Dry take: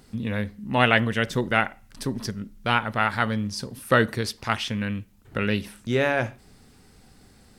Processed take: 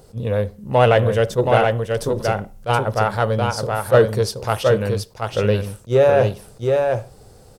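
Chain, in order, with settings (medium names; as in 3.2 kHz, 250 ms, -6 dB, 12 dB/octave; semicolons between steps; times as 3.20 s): ten-band graphic EQ 125 Hz +5 dB, 250 Hz -12 dB, 500 Hz +12 dB, 2 kHz -10 dB, 4 kHz -3 dB; in parallel at -5 dB: saturation -18.5 dBFS, distortion -8 dB; on the sum: delay 725 ms -4 dB; attacks held to a fixed rise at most 390 dB/s; trim +1.5 dB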